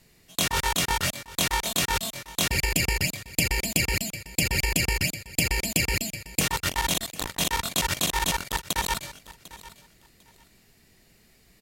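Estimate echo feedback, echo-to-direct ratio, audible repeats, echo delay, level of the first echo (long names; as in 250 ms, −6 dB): 21%, −18.0 dB, 2, 749 ms, −18.0 dB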